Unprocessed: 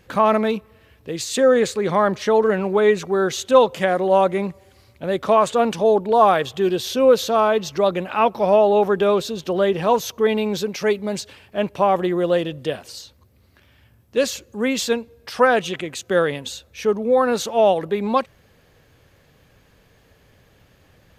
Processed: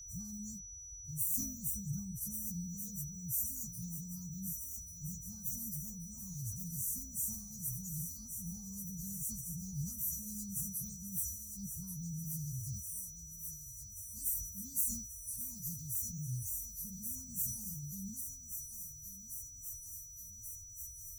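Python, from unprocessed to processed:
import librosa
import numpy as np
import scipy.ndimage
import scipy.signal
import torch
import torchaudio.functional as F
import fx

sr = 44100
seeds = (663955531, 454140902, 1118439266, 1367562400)

p1 = fx.partial_stretch(x, sr, pct=123)
p2 = scipy.signal.sosfilt(scipy.signal.cheby2(4, 60, [360.0, 3200.0], 'bandstop', fs=sr, output='sos'), p1)
p3 = p2 + 10.0 ** (-49.0 / 20.0) * np.sin(2.0 * np.pi * 5900.0 * np.arange(len(p2)) / sr)
p4 = p3 + fx.echo_thinned(p3, sr, ms=1134, feedback_pct=79, hz=450.0, wet_db=-7.5, dry=0)
p5 = fx.sustainer(p4, sr, db_per_s=69.0)
y = p5 * 10.0 ** (1.5 / 20.0)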